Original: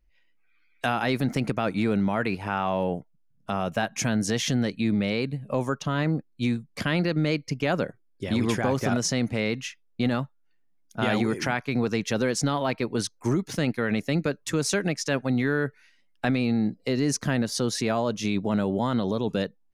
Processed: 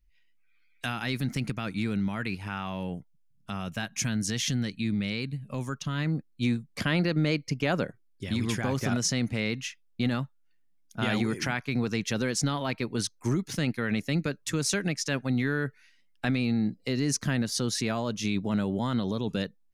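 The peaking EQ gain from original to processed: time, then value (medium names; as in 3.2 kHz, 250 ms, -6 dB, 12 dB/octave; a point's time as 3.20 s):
peaking EQ 610 Hz 2.2 oct
5.92 s -13.5 dB
6.50 s -3 dB
7.79 s -3 dB
8.42 s -13.5 dB
8.70 s -7 dB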